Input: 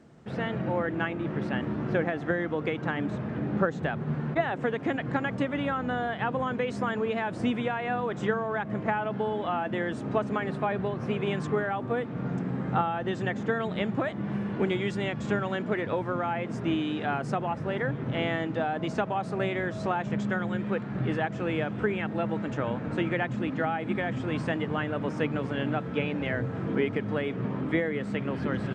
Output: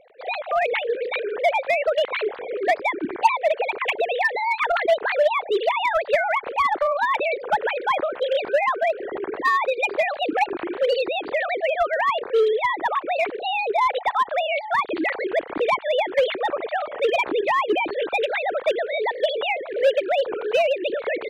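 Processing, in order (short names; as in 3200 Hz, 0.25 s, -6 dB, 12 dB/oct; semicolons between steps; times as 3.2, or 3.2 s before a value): sine-wave speech; in parallel at -7 dB: wavefolder -22.5 dBFS; on the sum: speed mistake 33 rpm record played at 45 rpm; gain +4 dB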